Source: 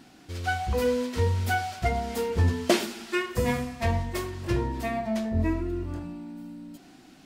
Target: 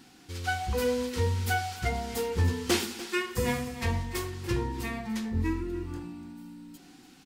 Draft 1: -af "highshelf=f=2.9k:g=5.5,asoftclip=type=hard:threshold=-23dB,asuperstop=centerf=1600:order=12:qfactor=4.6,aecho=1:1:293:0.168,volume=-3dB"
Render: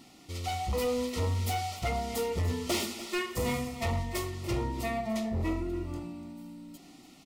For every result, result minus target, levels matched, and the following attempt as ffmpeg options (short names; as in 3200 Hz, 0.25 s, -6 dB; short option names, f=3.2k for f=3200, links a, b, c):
hard clip: distortion +14 dB; 2000 Hz band -3.5 dB
-af "highshelf=f=2.9k:g=5.5,asoftclip=type=hard:threshold=-14.5dB,asuperstop=centerf=1600:order=12:qfactor=4.6,aecho=1:1:293:0.168,volume=-3dB"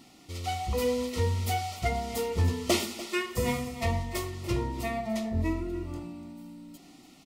2000 Hz band -3.5 dB
-af "highshelf=f=2.9k:g=5.5,asoftclip=type=hard:threshold=-14.5dB,asuperstop=centerf=630:order=12:qfactor=4.6,aecho=1:1:293:0.168,volume=-3dB"